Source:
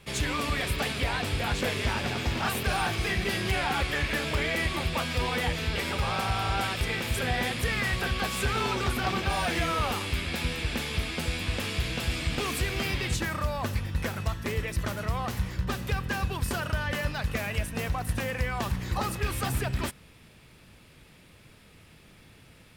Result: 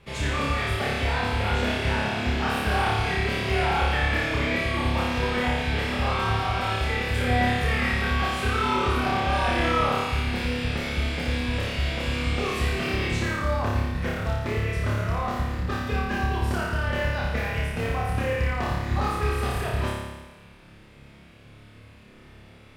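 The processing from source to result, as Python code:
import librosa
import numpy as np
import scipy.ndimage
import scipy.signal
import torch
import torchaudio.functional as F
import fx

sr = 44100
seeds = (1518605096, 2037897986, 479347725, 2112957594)

y = fx.lowpass(x, sr, hz=2400.0, slope=6)
y = fx.room_flutter(y, sr, wall_m=4.9, rt60_s=1.2)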